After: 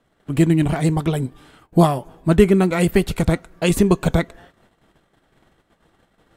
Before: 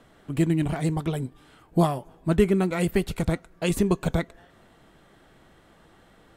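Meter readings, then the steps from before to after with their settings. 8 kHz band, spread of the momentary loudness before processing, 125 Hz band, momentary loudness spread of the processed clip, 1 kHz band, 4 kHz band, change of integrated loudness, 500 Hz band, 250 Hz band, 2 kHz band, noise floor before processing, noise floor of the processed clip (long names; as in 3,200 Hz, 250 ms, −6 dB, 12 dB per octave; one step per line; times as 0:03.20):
+7.0 dB, 9 LU, +7.0 dB, 9 LU, +7.0 dB, +7.0 dB, +7.0 dB, +7.0 dB, +7.0 dB, +7.0 dB, −57 dBFS, −65 dBFS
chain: noise gate −53 dBFS, range −17 dB
level +7 dB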